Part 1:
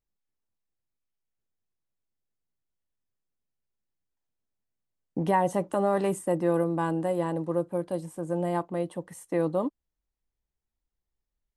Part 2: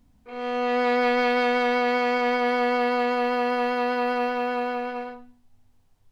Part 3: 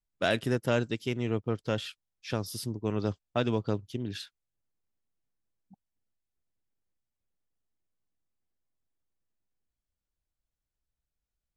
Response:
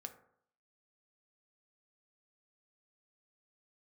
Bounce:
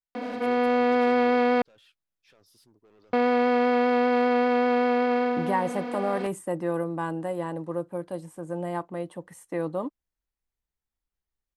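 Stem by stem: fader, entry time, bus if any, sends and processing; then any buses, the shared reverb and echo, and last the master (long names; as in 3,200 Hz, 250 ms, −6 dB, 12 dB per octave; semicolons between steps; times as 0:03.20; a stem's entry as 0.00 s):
−3.5 dB, 0.20 s, no send, parametric band 1,600 Hz +4 dB 1.6 octaves
−4.0 dB, 0.15 s, muted 0:01.62–0:03.13, no send, compressor on every frequency bin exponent 0.2; Butterworth high-pass 210 Hz; spectral tilt −3.5 dB per octave
0:01.30 −4.5 dB → 0:01.62 −16 dB, 0.00 s, no send, bass and treble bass −13 dB, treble −5 dB; brickwall limiter −24 dBFS, peak gain reduction 10.5 dB; soft clipping −38 dBFS, distortion −7 dB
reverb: not used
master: no processing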